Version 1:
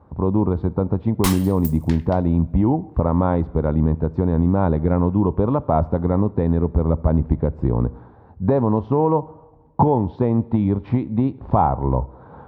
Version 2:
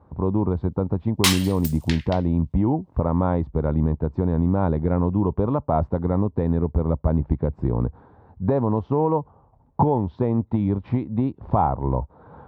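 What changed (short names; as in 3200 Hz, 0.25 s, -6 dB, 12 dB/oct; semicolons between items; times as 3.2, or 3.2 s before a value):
background: add weighting filter D; reverb: off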